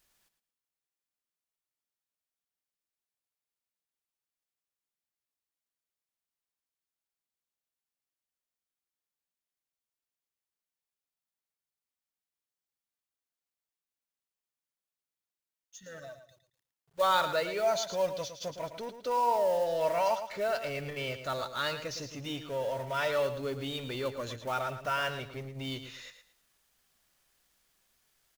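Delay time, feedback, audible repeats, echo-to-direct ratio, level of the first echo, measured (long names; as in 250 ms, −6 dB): 112 ms, 25%, 3, −9.5 dB, −10.0 dB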